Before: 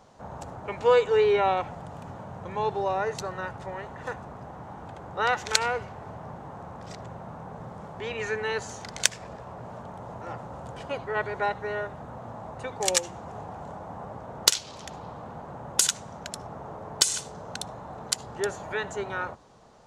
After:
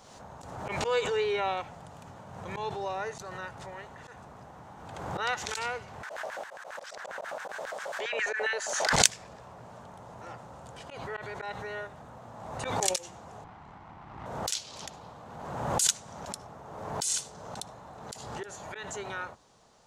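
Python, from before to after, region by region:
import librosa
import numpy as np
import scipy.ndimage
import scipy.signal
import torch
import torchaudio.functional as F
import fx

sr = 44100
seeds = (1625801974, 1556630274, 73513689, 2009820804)

y = fx.chain(x, sr, fx.low_shelf(hz=400.0, db=9.0),
    fx.filter_lfo_highpass(shape='square', hz=7.4, low_hz=580.0, high_hz=1600.0, q=5.3),
    fx.band_squash(depth_pct=70), at=(6.03, 8.93))
y = fx.chain(y, sr, fx.lower_of_two(delay_ms=1.0),
    fx.spacing_loss(db_at_10k=21), at=(13.44, 14.26))
y = fx.high_shelf(y, sr, hz=2100.0, db=10.5)
y = fx.auto_swell(y, sr, attack_ms=111.0)
y = fx.pre_swell(y, sr, db_per_s=39.0)
y = y * 10.0 ** (-8.5 / 20.0)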